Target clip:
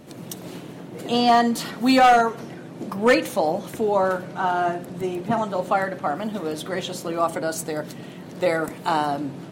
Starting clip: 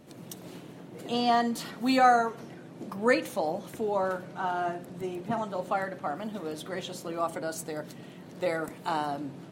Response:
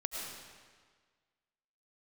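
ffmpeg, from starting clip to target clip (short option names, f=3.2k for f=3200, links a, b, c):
-af "asoftclip=type=hard:threshold=-17.5dB,volume=8dB"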